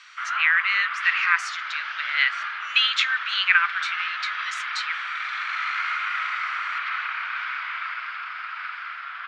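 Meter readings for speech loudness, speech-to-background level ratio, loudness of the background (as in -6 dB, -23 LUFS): -23.0 LUFS, 5.5 dB, -28.5 LUFS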